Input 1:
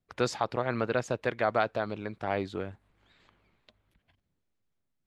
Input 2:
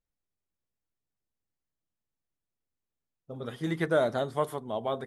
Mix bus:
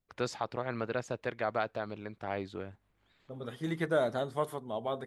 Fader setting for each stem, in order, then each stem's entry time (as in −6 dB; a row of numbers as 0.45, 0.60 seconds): −5.5, −3.5 decibels; 0.00, 0.00 seconds